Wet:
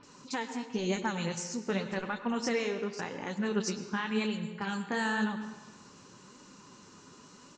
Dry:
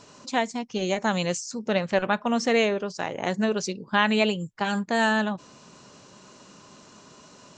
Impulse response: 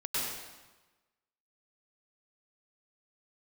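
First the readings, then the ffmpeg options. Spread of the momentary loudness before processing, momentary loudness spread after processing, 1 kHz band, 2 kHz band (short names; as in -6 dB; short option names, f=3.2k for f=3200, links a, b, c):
8 LU, 22 LU, -9.5 dB, -8.5 dB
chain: -filter_complex "[0:a]equalizer=f=640:t=o:w=0.38:g=-13,alimiter=limit=-18dB:level=0:latency=1:release=383,flanger=delay=3.3:depth=8.8:regen=47:speed=0.93:shape=sinusoidal,acrossover=split=3100[a][b];[b]adelay=30[c];[a][c]amix=inputs=2:normalize=0,asplit=2[d][e];[1:a]atrim=start_sample=2205,highshelf=f=7.6k:g=-10[f];[e][f]afir=irnorm=-1:irlink=0,volume=-14dB[g];[d][g]amix=inputs=2:normalize=0"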